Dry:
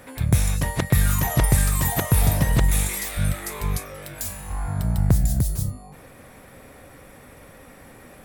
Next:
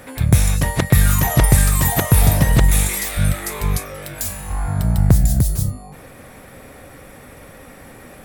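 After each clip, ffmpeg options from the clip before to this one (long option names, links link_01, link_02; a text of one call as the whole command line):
ffmpeg -i in.wav -af "bandreject=frequency=1000:width=24,volume=5.5dB" out.wav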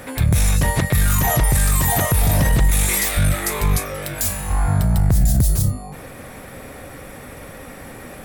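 ffmpeg -i in.wav -af "alimiter=limit=-12.5dB:level=0:latency=1:release=14,volume=4dB" out.wav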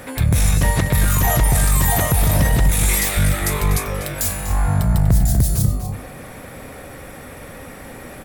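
ffmpeg -i in.wav -filter_complex "[0:a]asplit=2[link_01][link_02];[link_02]adelay=244.9,volume=-8dB,highshelf=frequency=4000:gain=-5.51[link_03];[link_01][link_03]amix=inputs=2:normalize=0" out.wav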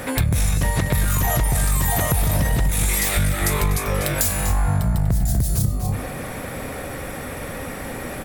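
ffmpeg -i in.wav -af "acompressor=threshold=-22dB:ratio=6,volume=5.5dB" out.wav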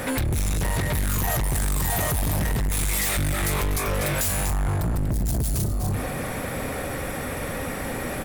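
ffmpeg -i in.wav -af "asoftclip=type=hard:threshold=-22.5dB,volume=1dB" out.wav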